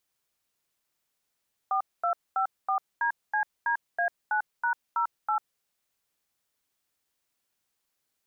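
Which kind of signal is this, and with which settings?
touch tones "4254DCDA9#08", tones 96 ms, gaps 229 ms, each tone −26 dBFS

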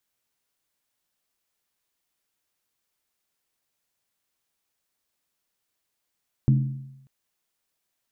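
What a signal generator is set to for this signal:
struck skin length 0.59 s, lowest mode 135 Hz, decay 0.89 s, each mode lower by 8 dB, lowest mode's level −13.5 dB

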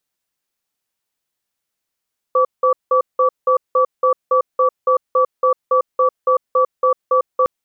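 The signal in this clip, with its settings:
tone pair in a cadence 513 Hz, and 1,150 Hz, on 0.10 s, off 0.18 s, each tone −13.5 dBFS 5.11 s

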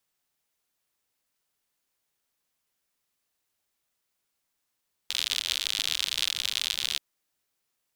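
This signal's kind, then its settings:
rain-like ticks over hiss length 1.88 s, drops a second 80, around 3,500 Hz, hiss −28.5 dB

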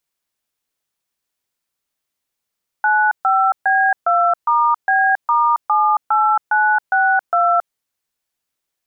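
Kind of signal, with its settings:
touch tones "95B2*B*78962", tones 273 ms, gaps 135 ms, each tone −14.5 dBFS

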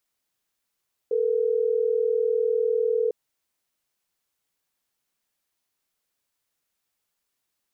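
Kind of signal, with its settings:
call progress tone ringback tone, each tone −23 dBFS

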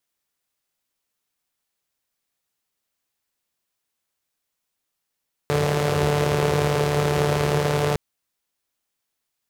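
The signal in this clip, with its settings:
pulse-train model of a four-cylinder engine, steady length 2.46 s, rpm 4,400, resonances 100/150/410 Hz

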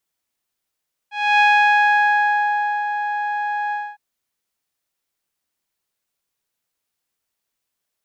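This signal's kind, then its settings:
subtractive voice saw G#5 12 dB per octave, low-pass 1,400 Hz, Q 2.1, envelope 1 octave, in 1.39 s, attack 283 ms, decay 1.45 s, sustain −10 dB, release 0.25 s, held 2.61 s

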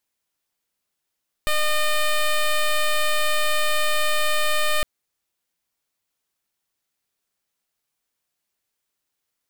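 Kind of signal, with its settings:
pulse wave 608 Hz, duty 10% −19.5 dBFS 3.36 s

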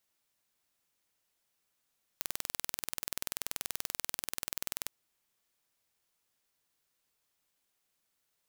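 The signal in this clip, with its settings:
impulse train 20.7 per second, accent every 0, −7 dBFS 2.66 s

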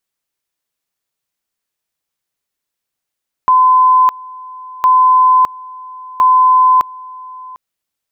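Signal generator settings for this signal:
tone at two levels in turn 1,020 Hz −5.5 dBFS, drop 22.5 dB, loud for 0.61 s, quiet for 0.75 s, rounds 3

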